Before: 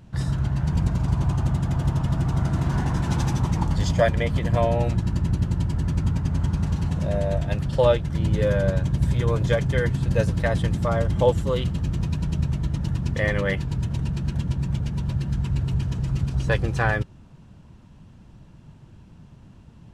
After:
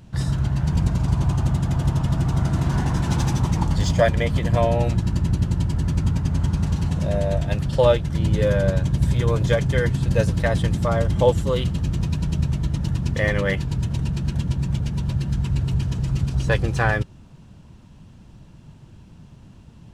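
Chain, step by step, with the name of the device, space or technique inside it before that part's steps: exciter from parts (in parallel at -6.5 dB: high-pass 2.2 kHz 12 dB/octave + saturation -39.5 dBFS, distortion -5 dB); on the sum: trim +2 dB

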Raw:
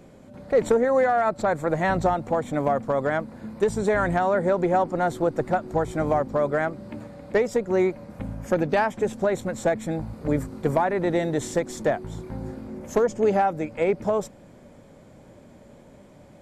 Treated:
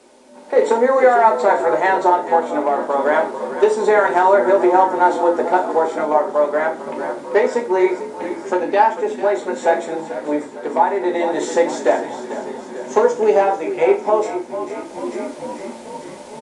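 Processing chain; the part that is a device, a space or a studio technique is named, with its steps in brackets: high-pass 250 Hz 24 dB/octave; frequency-shifting echo 445 ms, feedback 64%, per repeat -41 Hz, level -12 dB; filmed off a television (band-pass 240–6900 Hz; peaking EQ 900 Hz +9 dB 0.27 oct; reverberation RT60 0.35 s, pre-delay 3 ms, DRR 0.5 dB; white noise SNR 33 dB; level rider; trim -1 dB; AAC 96 kbps 22.05 kHz)

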